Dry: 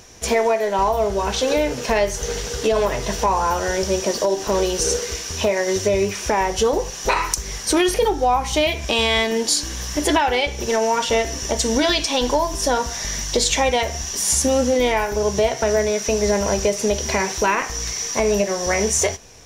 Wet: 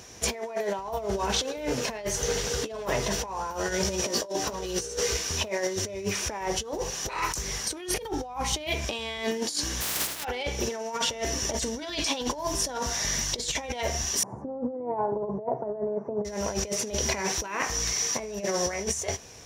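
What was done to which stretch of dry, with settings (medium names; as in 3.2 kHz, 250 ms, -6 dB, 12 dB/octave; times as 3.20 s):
3.49–5.17 s: doubling 17 ms -3 dB
9.80–10.23 s: spectral contrast reduction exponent 0.13
14.23–16.25 s: elliptic band-pass 110–950 Hz, stop band 50 dB
whole clip: compressor with a negative ratio -23 dBFS, ratio -0.5; high-pass 64 Hz; trim -5.5 dB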